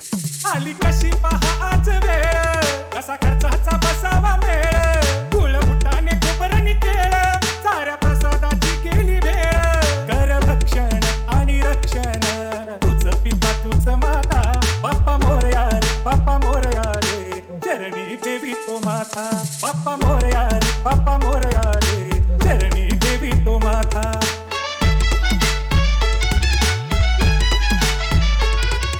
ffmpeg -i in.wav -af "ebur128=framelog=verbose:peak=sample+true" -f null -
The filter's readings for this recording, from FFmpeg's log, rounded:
Integrated loudness:
  I:         -18.7 LUFS
  Threshold: -28.7 LUFS
Loudness range:
  LRA:         2.7 LU
  Threshold: -38.7 LUFS
  LRA low:   -20.4 LUFS
  LRA high:  -17.8 LUFS
Sample peak:
  Peak:       -8.1 dBFS
True peak:
  Peak:       -8.1 dBFS